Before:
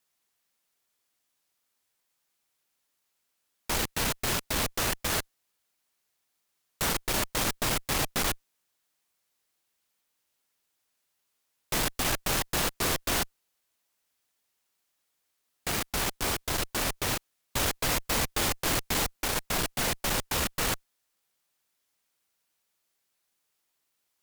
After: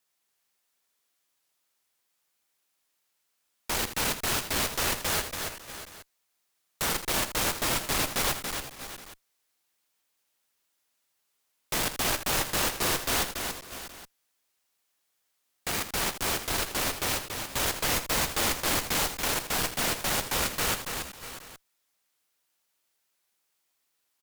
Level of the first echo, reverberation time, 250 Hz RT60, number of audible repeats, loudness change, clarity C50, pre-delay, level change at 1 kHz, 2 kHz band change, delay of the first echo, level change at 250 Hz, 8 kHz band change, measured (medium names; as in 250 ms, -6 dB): -10.5 dB, no reverb, no reverb, 4, +1.0 dB, no reverb, no reverb, +1.5 dB, +1.5 dB, 81 ms, -1.0 dB, +1.5 dB